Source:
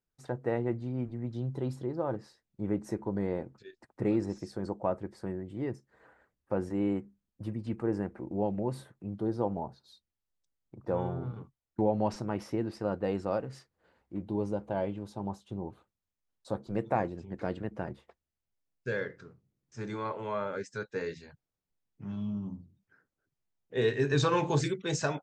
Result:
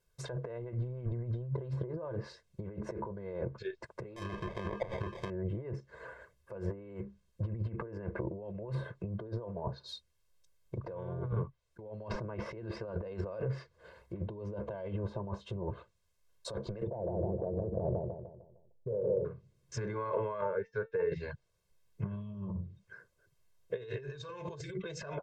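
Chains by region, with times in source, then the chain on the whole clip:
4.16–5.3 self-modulated delay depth 0.88 ms + sample-rate reducer 1400 Hz
16.87–19.25 steep low-pass 880 Hz 96 dB/oct + compressor 2:1, threshold -35 dBFS + feedback echo 0.153 s, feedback 40%, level -7 dB
20.41–21.12 LPF 2500 Hz + resonator 450 Hz, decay 0.17 s, mix 80%
whole clip: negative-ratio compressor -42 dBFS, ratio -1; treble ducked by the level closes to 1600 Hz, closed at -35.5 dBFS; comb 1.9 ms, depth 97%; gain +1.5 dB

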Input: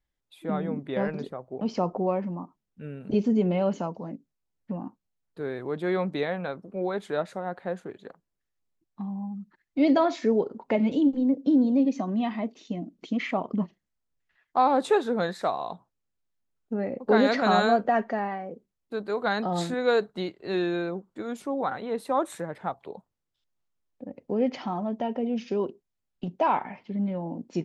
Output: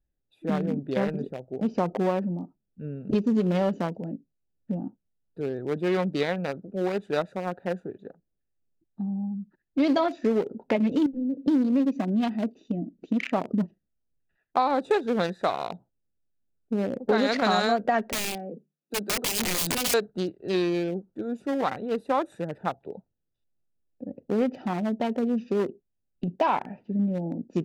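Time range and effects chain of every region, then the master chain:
11.06–11.48 CVSD 64 kbps + compressor 2:1, threshold -33 dBFS + air absorption 310 m
18.12–19.94 Chebyshev high-pass 150 Hz, order 10 + high shelf 4000 Hz +9 dB + wrapped overs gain 25 dB
whole clip: Wiener smoothing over 41 samples; high shelf 2400 Hz +9.5 dB; compressor 4:1, threshold -24 dBFS; gain +4 dB

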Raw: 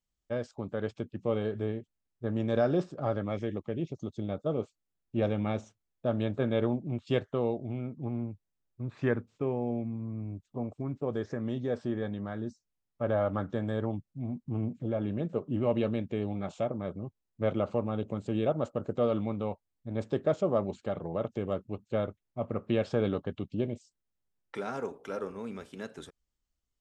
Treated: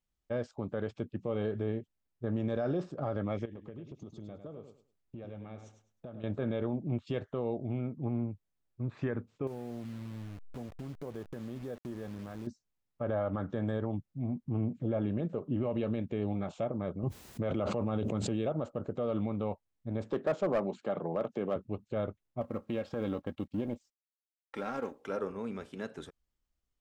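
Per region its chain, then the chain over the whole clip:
3.45–6.24 compressor 12:1, threshold -42 dBFS + feedback echo 0.103 s, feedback 23%, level -8 dB
9.47–12.47 level-crossing sampler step -40.5 dBFS + compressor 2.5:1, threshold -42 dBFS
17.03–18.51 HPF 48 Hz + high shelf 3800 Hz +5 dB + fast leveller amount 70%
20.11–21.56 HPF 150 Hz 24 dB/oct + bell 1000 Hz +3.5 dB 2.4 oct + hard clip -21 dBFS
22.41–25.05 G.711 law mismatch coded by A + comb 3.7 ms, depth 42% + compressor 10:1, threshold -29 dBFS
whole clip: high shelf 4200 Hz -7 dB; limiter -25 dBFS; gain +1 dB

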